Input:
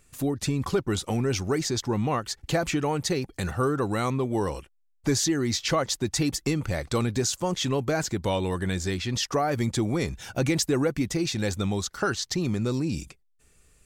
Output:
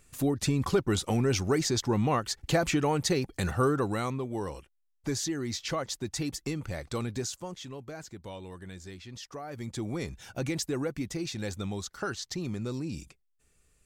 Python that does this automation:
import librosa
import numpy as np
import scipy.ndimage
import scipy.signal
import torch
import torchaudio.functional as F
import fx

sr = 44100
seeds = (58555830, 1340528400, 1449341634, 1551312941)

y = fx.gain(x, sr, db=fx.line((3.69, -0.5), (4.24, -7.5), (7.21, -7.5), (7.67, -16.0), (9.41, -16.0), (9.89, -7.5)))